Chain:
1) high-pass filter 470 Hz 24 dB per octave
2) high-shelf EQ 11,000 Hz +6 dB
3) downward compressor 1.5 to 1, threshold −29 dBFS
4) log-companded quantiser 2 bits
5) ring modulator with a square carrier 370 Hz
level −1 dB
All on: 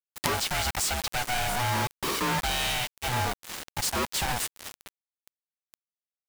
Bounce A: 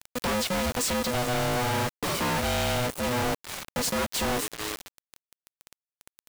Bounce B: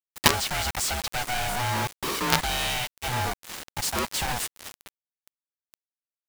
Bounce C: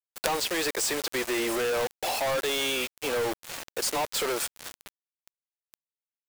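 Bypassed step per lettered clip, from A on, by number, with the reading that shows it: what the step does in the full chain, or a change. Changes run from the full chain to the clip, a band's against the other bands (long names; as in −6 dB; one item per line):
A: 1, 500 Hz band +7.5 dB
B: 3, change in momentary loudness spread +3 LU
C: 5, 125 Hz band −13.0 dB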